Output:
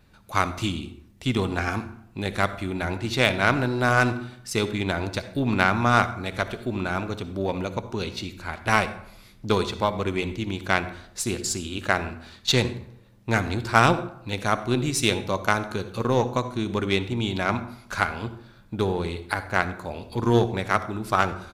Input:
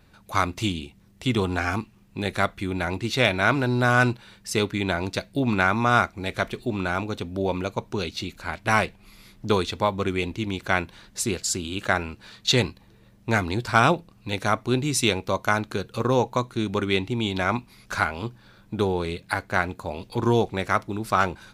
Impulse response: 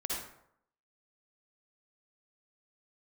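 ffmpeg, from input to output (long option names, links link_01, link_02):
-filter_complex "[0:a]asplit=2[link_01][link_02];[link_02]adelay=90,highpass=300,lowpass=3400,asoftclip=type=hard:threshold=-15dB,volume=-21dB[link_03];[link_01][link_03]amix=inputs=2:normalize=0,asplit=2[link_04][link_05];[1:a]atrim=start_sample=2205,lowshelf=frequency=220:gain=9[link_06];[link_05][link_06]afir=irnorm=-1:irlink=0,volume=-13dB[link_07];[link_04][link_07]amix=inputs=2:normalize=0,aeval=exprs='0.708*(cos(1*acos(clip(val(0)/0.708,-1,1)))-cos(1*PI/2))+0.1*(cos(3*acos(clip(val(0)/0.708,-1,1)))-cos(3*PI/2))+0.00891*(cos(8*acos(clip(val(0)/0.708,-1,1)))-cos(8*PI/2))':channel_layout=same,volume=1.5dB"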